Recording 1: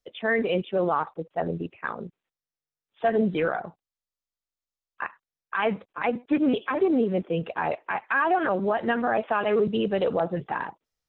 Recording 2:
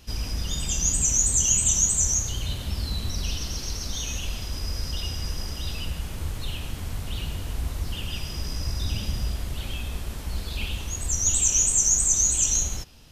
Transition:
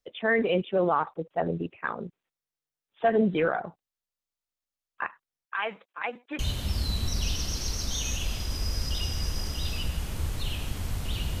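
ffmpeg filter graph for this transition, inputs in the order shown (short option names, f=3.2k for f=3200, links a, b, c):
-filter_complex "[0:a]asettb=1/sr,asplit=3[a][b][c];[a]atrim=end=5.454[d];[b]atrim=start=5.45:end=6.39,asetpts=PTS-STARTPTS,afade=t=in:d=0.004:c=qsin,afade=t=out:st=0.936:d=0.004:c=qsin,highpass=f=1.5k:p=1[e];[c]atrim=start=6.386[f];[d][e]acrossfade=d=0.004:c1=hsin:c2=qsin[g];[g][f]acrossfade=d=0.004:c1=qsin:c2=hsin,apad=whole_dur=11.4,atrim=end=11.4,atrim=end=6.392[h];[1:a]atrim=start=2.408:end=7.42[i];[h][i]acrossfade=d=0.004:c1=hsin:c2=hsin"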